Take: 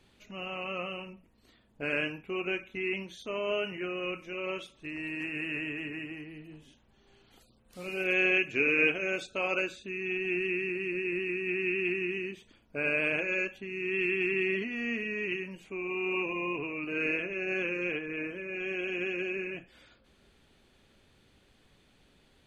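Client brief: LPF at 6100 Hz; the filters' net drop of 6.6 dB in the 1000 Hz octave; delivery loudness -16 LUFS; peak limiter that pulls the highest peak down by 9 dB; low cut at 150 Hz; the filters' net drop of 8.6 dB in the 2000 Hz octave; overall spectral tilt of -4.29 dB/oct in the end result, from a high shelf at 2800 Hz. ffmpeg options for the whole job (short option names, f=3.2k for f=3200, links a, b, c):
-af "highpass=150,lowpass=6.1k,equalizer=f=1k:t=o:g=-5.5,equalizer=f=2k:t=o:g=-8,highshelf=f=2.8k:g=-5,volume=22dB,alimiter=limit=-6dB:level=0:latency=1"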